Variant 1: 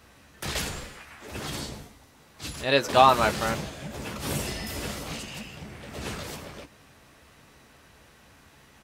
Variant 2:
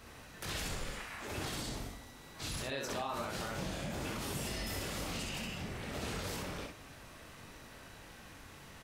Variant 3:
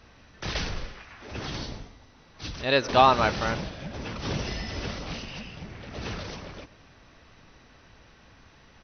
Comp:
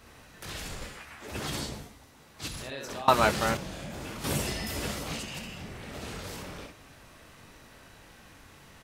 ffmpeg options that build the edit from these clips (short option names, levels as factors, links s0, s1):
-filter_complex "[0:a]asplit=3[s0][s1][s2];[1:a]asplit=4[s3][s4][s5][s6];[s3]atrim=end=0.822[s7];[s0]atrim=start=0.818:end=2.482[s8];[s4]atrim=start=2.478:end=3.082[s9];[s1]atrim=start=3.078:end=3.572[s10];[s5]atrim=start=3.568:end=4.242[s11];[s2]atrim=start=4.238:end=5.392[s12];[s6]atrim=start=5.388[s13];[s7][s8]acrossfade=d=0.004:c1=hsin:c2=hsin[s14];[s14][s9]acrossfade=d=0.004:c1=hsin:c2=hsin[s15];[s15][s10]acrossfade=d=0.004:c1=hsin:c2=hsin[s16];[s16][s11]acrossfade=d=0.004:c1=hsin:c2=hsin[s17];[s17][s12]acrossfade=d=0.004:c1=hsin:c2=hsin[s18];[s18][s13]acrossfade=d=0.004:c1=hsin:c2=hsin"